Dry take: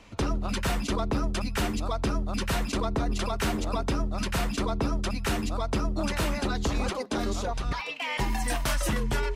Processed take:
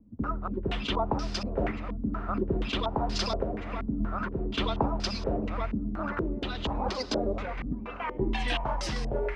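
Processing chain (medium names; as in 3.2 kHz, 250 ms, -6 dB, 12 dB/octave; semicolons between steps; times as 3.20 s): random-step tremolo; on a send: echo that smears into a reverb 596 ms, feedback 44%, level -11.5 dB; on the sum: step-sequenced low-pass 4.2 Hz 240–5000 Hz; trim -1.5 dB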